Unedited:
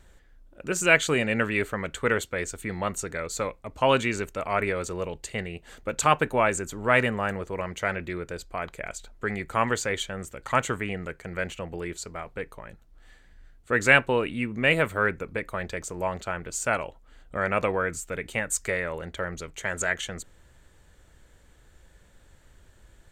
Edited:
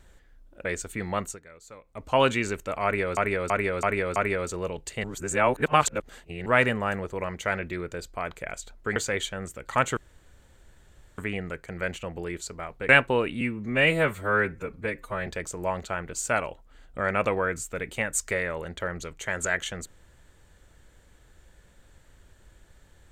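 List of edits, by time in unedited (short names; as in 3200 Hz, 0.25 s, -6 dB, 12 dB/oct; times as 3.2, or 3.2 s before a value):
0.65–2.34 cut
2.91–3.7 dip -17.5 dB, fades 0.18 s
4.53–4.86 loop, 5 plays
5.41–6.83 reverse
9.33–9.73 cut
10.74 insert room tone 1.21 s
12.45–13.88 cut
14.4–15.64 stretch 1.5×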